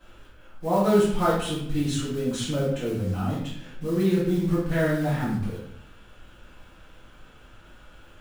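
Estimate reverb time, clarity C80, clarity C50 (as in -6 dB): 0.70 s, 5.0 dB, 1.5 dB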